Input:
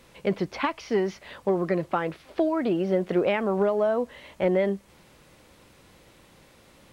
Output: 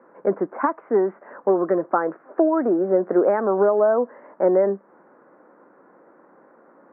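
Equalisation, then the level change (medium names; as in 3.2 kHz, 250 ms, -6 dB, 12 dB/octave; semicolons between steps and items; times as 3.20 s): high-pass 250 Hz 24 dB/octave; steep low-pass 1.6 kHz 48 dB/octave; +6.0 dB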